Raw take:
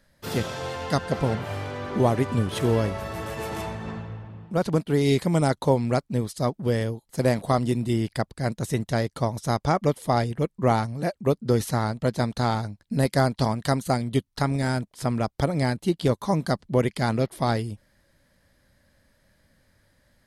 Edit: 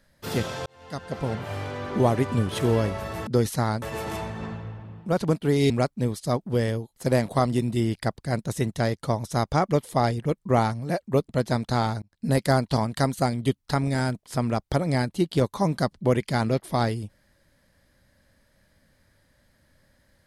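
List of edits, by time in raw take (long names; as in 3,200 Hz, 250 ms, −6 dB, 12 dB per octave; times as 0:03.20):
0:00.66–0:01.63: fade in
0:05.15–0:05.83: remove
0:11.42–0:11.97: move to 0:03.27
0:12.70–0:12.95: fade in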